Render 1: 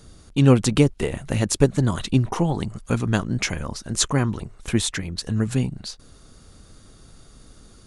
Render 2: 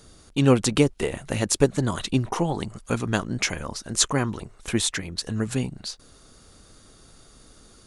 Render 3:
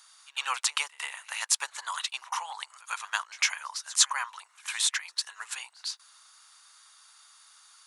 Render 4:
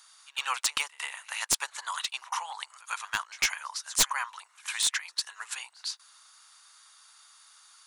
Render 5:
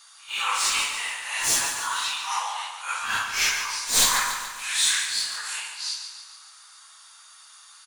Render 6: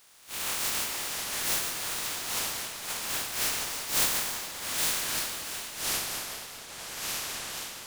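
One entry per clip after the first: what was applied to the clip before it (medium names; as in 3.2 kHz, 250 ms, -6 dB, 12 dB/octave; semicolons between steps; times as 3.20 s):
tone controls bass -6 dB, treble +1 dB
elliptic high-pass 940 Hz, stop band 80 dB; pre-echo 103 ms -21 dB
one-sided wavefolder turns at -17.5 dBFS
phase randomisation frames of 200 ms; on a send: feedback delay 143 ms, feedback 53%, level -8 dB; on the sum: trim +6 dB
spectral contrast reduction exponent 0.14; ever faster or slower copies 255 ms, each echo -6 st, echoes 3, each echo -6 dB; trim -6 dB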